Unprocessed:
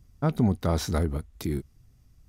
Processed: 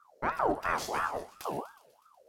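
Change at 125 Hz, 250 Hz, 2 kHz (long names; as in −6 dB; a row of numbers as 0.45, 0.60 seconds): −23.0, −13.5, +7.5 decibels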